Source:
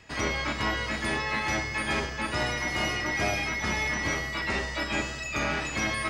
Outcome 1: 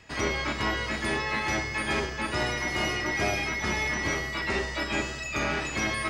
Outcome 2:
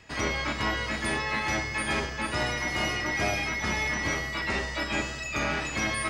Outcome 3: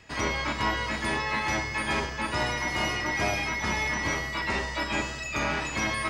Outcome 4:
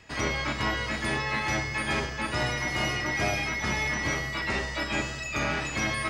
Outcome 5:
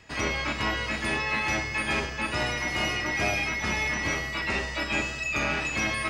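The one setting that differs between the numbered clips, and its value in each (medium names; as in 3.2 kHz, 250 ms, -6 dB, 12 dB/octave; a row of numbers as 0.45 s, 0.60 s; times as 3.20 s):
dynamic bell, frequency: 380 Hz, 9.3 kHz, 970 Hz, 130 Hz, 2.6 kHz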